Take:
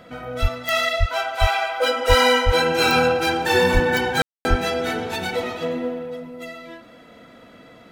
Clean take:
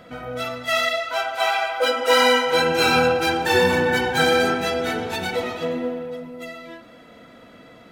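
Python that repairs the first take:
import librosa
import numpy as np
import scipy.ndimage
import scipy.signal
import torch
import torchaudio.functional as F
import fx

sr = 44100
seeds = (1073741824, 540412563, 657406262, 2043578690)

y = fx.fix_declick_ar(x, sr, threshold=10.0)
y = fx.fix_deplosive(y, sr, at_s=(0.41, 0.99, 1.4, 2.08, 2.45, 3.73, 4.49))
y = fx.fix_ambience(y, sr, seeds[0], print_start_s=7.4, print_end_s=7.9, start_s=4.22, end_s=4.45)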